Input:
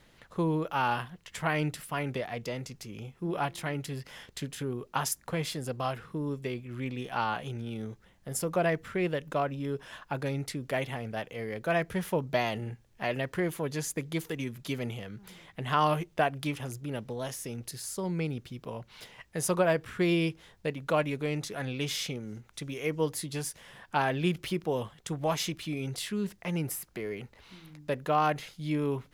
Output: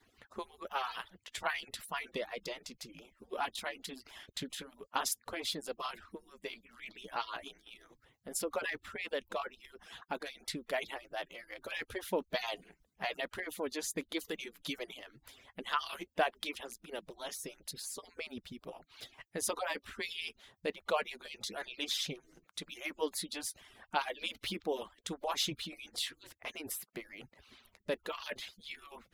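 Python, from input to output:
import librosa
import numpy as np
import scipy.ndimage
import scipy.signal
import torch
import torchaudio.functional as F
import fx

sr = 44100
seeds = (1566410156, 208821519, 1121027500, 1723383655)

y = fx.hpss_only(x, sr, part='percussive')
y = fx.dynamic_eq(y, sr, hz=3800.0, q=2.3, threshold_db=-58.0, ratio=4.0, max_db=8)
y = y * 10.0 ** (-3.5 / 20.0)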